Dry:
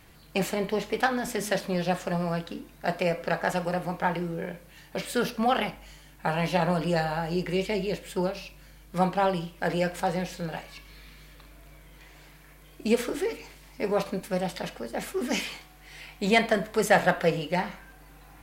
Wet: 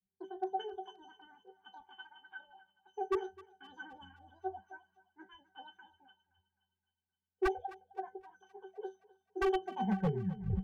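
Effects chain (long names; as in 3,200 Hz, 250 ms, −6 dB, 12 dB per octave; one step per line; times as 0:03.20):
turntable brake at the end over 1.76 s
noise reduction from a noise print of the clip's start 20 dB
spectral tilt −4.5 dB per octave
resonances in every octave A, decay 0.3 s
wave folding −22 dBFS
feedback echo with a high-pass in the loop 451 ms, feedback 68%, high-pass 370 Hz, level −14.5 dB
wrong playback speed 45 rpm record played at 78 rpm
multiband upward and downward expander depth 40%
level −4.5 dB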